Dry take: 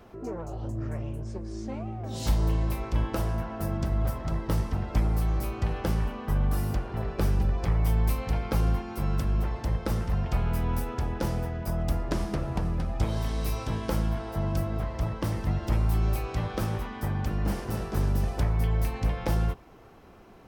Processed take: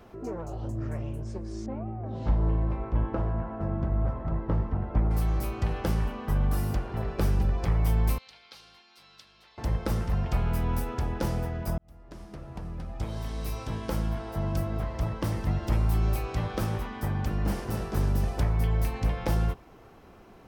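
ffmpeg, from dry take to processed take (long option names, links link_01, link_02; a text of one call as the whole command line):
ffmpeg -i in.wav -filter_complex "[0:a]asettb=1/sr,asplit=3[link_01][link_02][link_03];[link_01]atrim=end=1.664[link_04];[link_02]atrim=start=1.66:end=5.11,asetpts=PTS-STARTPTS,afade=type=in:duration=0.004:curve=qsin,afade=type=out:start_time=3.446:duration=0.004:curve=qsin,lowpass=1400[link_05];[link_03]atrim=start=5.106[link_06];[link_04][link_05]acrossfade=duration=0.004:curve1=hsin:curve2=qsin[link_07];[link_07][link_06]acrossfade=duration=0.004:curve1=qsin:curve2=hsin,asettb=1/sr,asplit=3[link_08][link_09][link_10];[link_08]atrim=end=8.184[link_11];[link_09]atrim=start=8.18:end=9.58,asetpts=PTS-STARTPTS,afade=type=in:duration=0.004:curve=qsin,afade=type=out:start_time=1.396:duration=0.004:curve=qsin,bandpass=frequency=4000:width_type=q:width=2.8[link_12];[link_10]atrim=start=9.576[link_13];[link_11][link_12]acrossfade=duration=0.004:curve1=hsin:curve2=qsin[link_14];[link_14][link_13]acrossfade=duration=0.004:curve1=qsin:curve2=hsin,asplit=2[link_15][link_16];[link_15]atrim=end=11.78,asetpts=PTS-STARTPTS,afade=type=out:start_time=11.776:duration=0.004:curve=hsin[link_17];[link_16]atrim=start=11.78,asetpts=PTS-STARTPTS,afade=type=in:duration=3.83:curve=qsin[link_18];[link_17][link_18]concat=n=2:v=0:a=1" out.wav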